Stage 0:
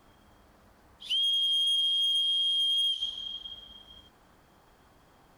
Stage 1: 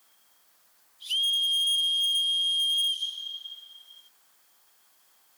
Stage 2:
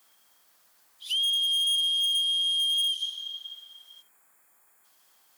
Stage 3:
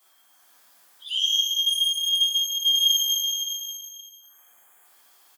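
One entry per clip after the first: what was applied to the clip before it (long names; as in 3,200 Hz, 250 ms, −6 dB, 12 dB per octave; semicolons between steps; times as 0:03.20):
first difference; level +8 dB
gain on a spectral selection 0:04.02–0:04.85, 2,600–6,700 Hz −13 dB
repeating echo 144 ms, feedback 40%, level −7 dB; gate on every frequency bin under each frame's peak −15 dB strong; reverb with rising layers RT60 1.2 s, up +12 semitones, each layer −8 dB, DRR −6.5 dB; level −2 dB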